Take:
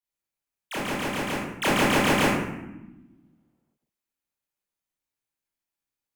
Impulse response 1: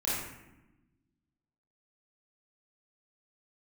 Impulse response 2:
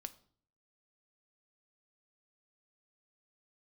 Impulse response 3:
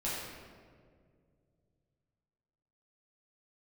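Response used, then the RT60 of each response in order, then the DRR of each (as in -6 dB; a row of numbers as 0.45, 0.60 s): 1; 1.0, 0.50, 2.1 s; -9.0, 11.0, -9.0 dB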